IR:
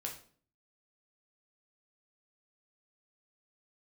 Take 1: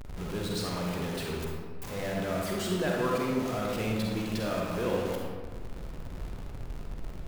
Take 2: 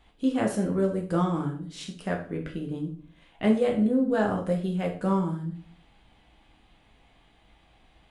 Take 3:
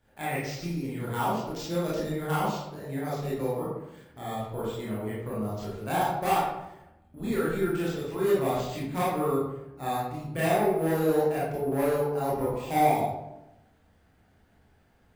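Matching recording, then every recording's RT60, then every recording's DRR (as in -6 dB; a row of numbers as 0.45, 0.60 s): 2; 1.7, 0.50, 0.90 s; -2.0, 0.0, -8.0 dB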